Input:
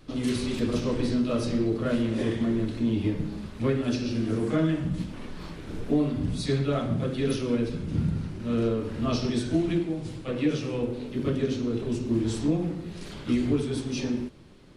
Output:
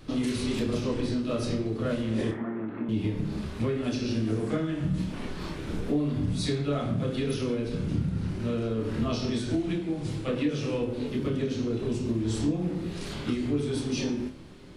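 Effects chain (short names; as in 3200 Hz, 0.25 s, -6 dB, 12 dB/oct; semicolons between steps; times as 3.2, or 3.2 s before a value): compressor, threshold -29 dBFS, peak gain reduction 10 dB; 2.31–2.89 speaker cabinet 240–2000 Hz, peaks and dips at 470 Hz -4 dB, 850 Hz +6 dB, 1300 Hz +6 dB; on a send: flutter echo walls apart 4.7 m, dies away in 0.23 s; on the sum: gain +3.5 dB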